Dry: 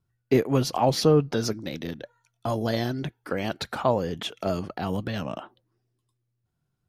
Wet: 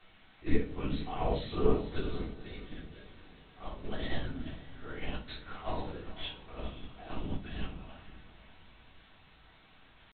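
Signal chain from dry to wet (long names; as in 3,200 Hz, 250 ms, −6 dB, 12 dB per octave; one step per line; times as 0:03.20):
pitch shifter swept by a sawtooth −1 semitone, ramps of 381 ms
high-pass filter 210 Hz 6 dB per octave
parametric band 540 Hz −10 dB 2.9 octaves
comb filter 4.2 ms, depth 75%
background noise white −45 dBFS
tempo change 0.68×
linear-prediction vocoder at 8 kHz whisper
on a send: feedback delay with all-pass diffusion 498 ms, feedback 43%, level −11.5 dB
on the sum: rectangular room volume 360 cubic metres, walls furnished, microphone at 3.5 metres
expander for the loud parts 1.5 to 1, over −31 dBFS
level −5 dB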